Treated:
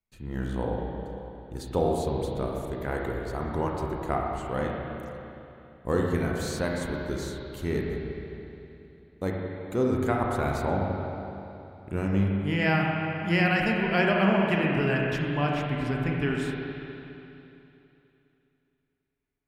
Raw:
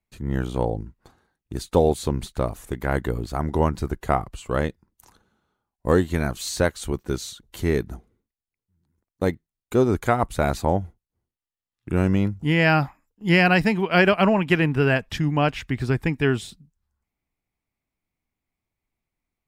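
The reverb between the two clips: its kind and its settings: spring tank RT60 3 s, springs 31/35/41 ms, chirp 30 ms, DRR -1.5 dB; trim -8.5 dB

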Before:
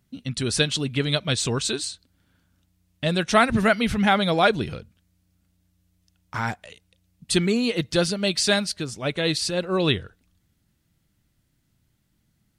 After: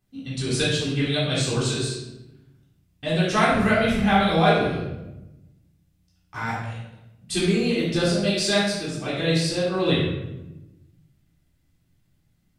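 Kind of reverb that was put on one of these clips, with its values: simulated room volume 400 m³, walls mixed, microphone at 3.7 m; trim -10 dB

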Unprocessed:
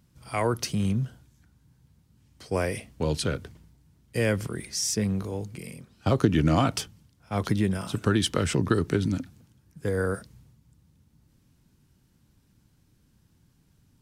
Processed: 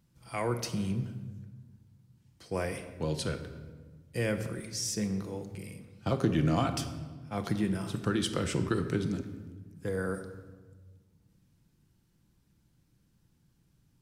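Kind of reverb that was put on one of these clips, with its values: simulated room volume 1200 m³, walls mixed, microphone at 0.76 m; trim -6.5 dB

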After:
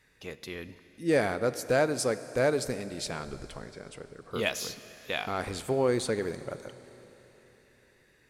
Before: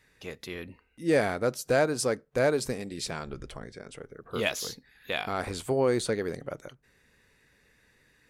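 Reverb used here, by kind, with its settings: Schroeder reverb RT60 3.9 s, combs from 32 ms, DRR 13.5 dB; trim -1 dB

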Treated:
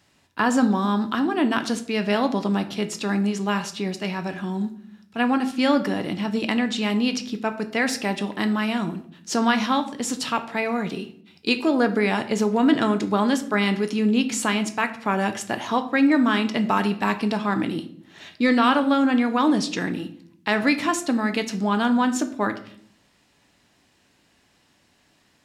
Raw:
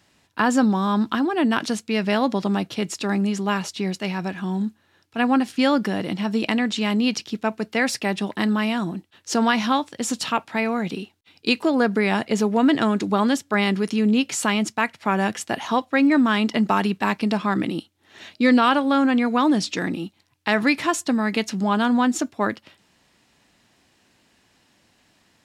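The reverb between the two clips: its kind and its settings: simulated room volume 95 m³, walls mixed, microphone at 0.31 m; trim -1.5 dB

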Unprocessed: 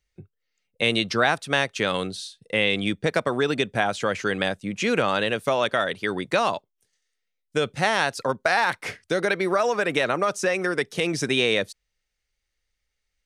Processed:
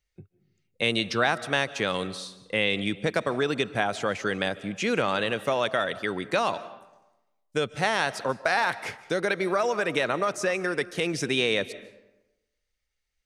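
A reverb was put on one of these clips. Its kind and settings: algorithmic reverb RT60 1 s, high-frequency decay 0.6×, pre-delay 110 ms, DRR 16 dB; trim -3 dB

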